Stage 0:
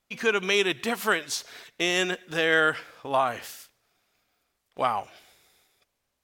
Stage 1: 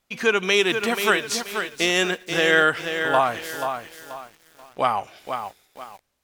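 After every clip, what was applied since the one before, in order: bit-crushed delay 483 ms, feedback 35%, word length 8-bit, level -7 dB; trim +4 dB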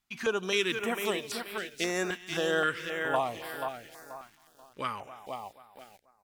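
echo from a far wall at 46 m, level -19 dB; step-sequenced notch 3.8 Hz 510–6400 Hz; trim -7.5 dB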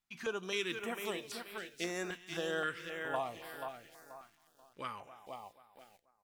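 feedback comb 170 Hz, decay 0.33 s, harmonics all, mix 50%; trim -3 dB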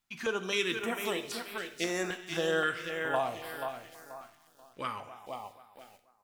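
gated-style reverb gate 220 ms falling, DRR 9.5 dB; trim +5.5 dB

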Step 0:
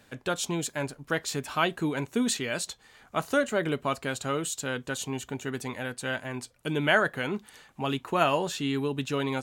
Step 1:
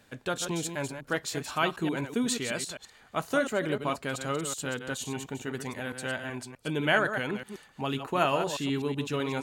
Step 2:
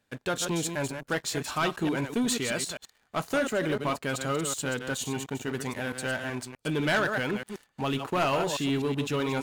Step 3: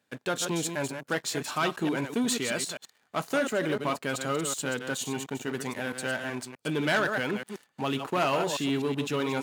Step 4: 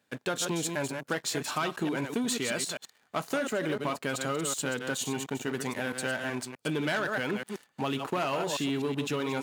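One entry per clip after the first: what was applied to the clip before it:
chunks repeated in reverse 126 ms, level -8 dB; trim -2 dB
waveshaping leveller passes 3; trim -8 dB
high-pass 140 Hz 12 dB/octave
compression, threshold -28 dBFS, peak gain reduction 6.5 dB; trim +1.5 dB

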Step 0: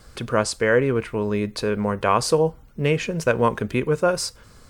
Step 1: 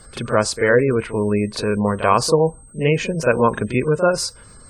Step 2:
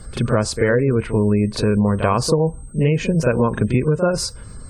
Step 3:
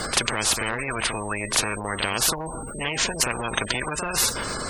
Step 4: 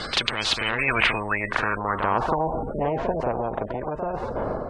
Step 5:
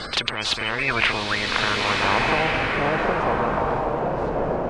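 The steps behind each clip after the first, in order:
whistle 8.3 kHz -47 dBFS; reverse echo 39 ms -11 dB; spectral gate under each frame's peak -30 dB strong; trim +3 dB
bass shelf 290 Hz +11.5 dB; compression, threshold -13 dBFS, peak gain reduction 8 dB
spectrum-flattening compressor 10:1; trim +3.5 dB
level rider; low-pass sweep 3.8 kHz -> 700 Hz, 0.53–2.57 s; trim -3.5 dB
swelling reverb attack 1480 ms, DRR -0.5 dB

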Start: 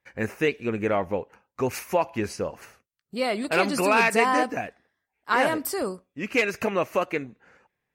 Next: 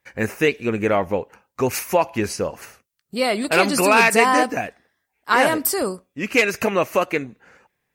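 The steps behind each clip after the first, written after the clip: treble shelf 5.1 kHz +6.5 dB; trim +5 dB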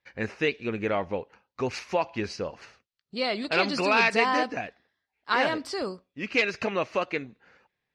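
four-pole ladder low-pass 5.2 kHz, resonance 40%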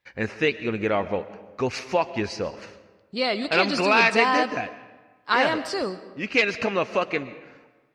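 reverberation RT60 1.3 s, pre-delay 85 ms, DRR 14.5 dB; trim +3.5 dB

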